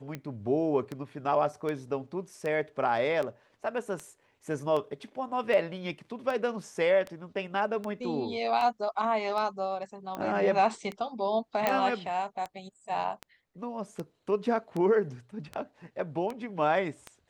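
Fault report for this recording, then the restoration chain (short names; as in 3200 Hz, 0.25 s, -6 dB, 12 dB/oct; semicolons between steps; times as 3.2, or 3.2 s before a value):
tick 78 rpm -22 dBFS
11.67 pop -12 dBFS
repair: de-click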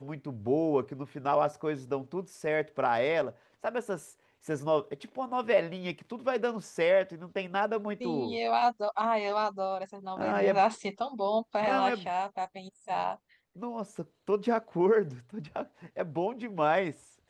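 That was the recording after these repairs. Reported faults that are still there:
none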